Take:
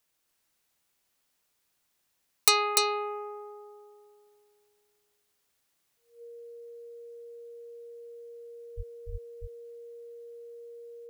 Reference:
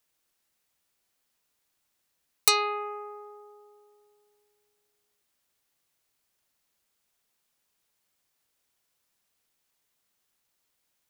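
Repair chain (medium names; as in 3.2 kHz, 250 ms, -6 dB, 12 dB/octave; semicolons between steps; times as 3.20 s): band-stop 470 Hz, Q 30; 8.76–8.88 s: high-pass 140 Hz 24 dB/octave; 9.11–9.23 s: high-pass 140 Hz 24 dB/octave; inverse comb 294 ms -4 dB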